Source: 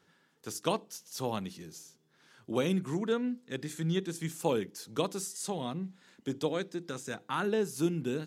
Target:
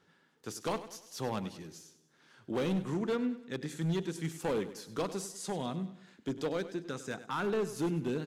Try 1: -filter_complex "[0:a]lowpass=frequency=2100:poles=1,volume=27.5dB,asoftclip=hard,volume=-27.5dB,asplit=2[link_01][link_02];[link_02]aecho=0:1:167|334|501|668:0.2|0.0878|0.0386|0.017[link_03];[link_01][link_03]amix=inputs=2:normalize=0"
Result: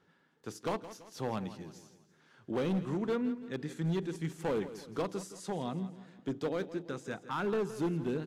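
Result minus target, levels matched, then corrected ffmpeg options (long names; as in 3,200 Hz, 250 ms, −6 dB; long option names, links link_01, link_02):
echo 68 ms late; 4,000 Hz band −3.5 dB
-filter_complex "[0:a]lowpass=frequency=5300:poles=1,volume=27.5dB,asoftclip=hard,volume=-27.5dB,asplit=2[link_01][link_02];[link_02]aecho=0:1:99|198|297|396:0.2|0.0878|0.0386|0.017[link_03];[link_01][link_03]amix=inputs=2:normalize=0"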